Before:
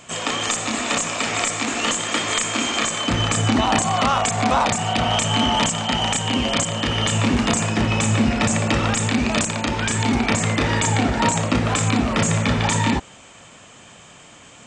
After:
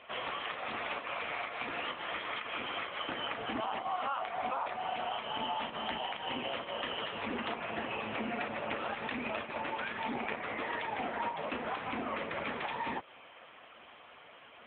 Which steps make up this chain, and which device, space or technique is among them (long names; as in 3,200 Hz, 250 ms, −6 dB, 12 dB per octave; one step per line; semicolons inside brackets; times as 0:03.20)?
0:05.58–0:06.03: dynamic equaliser 210 Hz, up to +5 dB, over −34 dBFS, Q 1.3
0:07.27–0:07.88: low-pass filter 5,100 Hz 24 dB per octave
voicemail (band-pass filter 410–2,900 Hz; downward compressor 8 to 1, threshold −28 dBFS, peak gain reduction 13 dB; level −2 dB; AMR narrowband 6.7 kbit/s 8,000 Hz)